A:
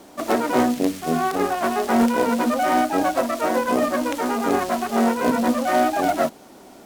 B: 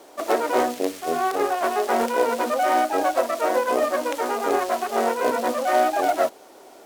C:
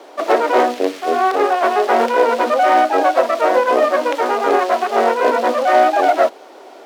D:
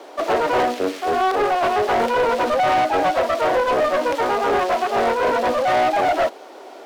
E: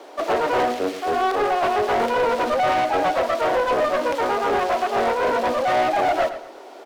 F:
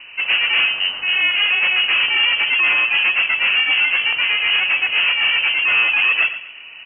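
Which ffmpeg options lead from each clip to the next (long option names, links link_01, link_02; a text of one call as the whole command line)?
ffmpeg -i in.wav -af "lowshelf=frequency=290:width_type=q:width=1.5:gain=-12,volume=-1.5dB" out.wav
ffmpeg -i in.wav -filter_complex "[0:a]acontrast=71,acrossover=split=230 5000:gain=0.0708 1 0.2[link_01][link_02][link_03];[link_01][link_02][link_03]amix=inputs=3:normalize=0,volume=1.5dB" out.wav
ffmpeg -i in.wav -af "asoftclip=type=tanh:threshold=-14dB" out.wav
ffmpeg -i in.wav -filter_complex "[0:a]asplit=2[link_01][link_02];[link_02]adelay=114,lowpass=frequency=4500:poles=1,volume=-12dB,asplit=2[link_03][link_04];[link_04]adelay=114,lowpass=frequency=4500:poles=1,volume=0.33,asplit=2[link_05][link_06];[link_06]adelay=114,lowpass=frequency=4500:poles=1,volume=0.33[link_07];[link_01][link_03][link_05][link_07]amix=inputs=4:normalize=0,volume=-2dB" out.wav
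ffmpeg -i in.wav -af "lowpass=frequency=2800:width_type=q:width=0.5098,lowpass=frequency=2800:width_type=q:width=0.6013,lowpass=frequency=2800:width_type=q:width=0.9,lowpass=frequency=2800:width_type=q:width=2.563,afreqshift=-3300,volume=3.5dB" out.wav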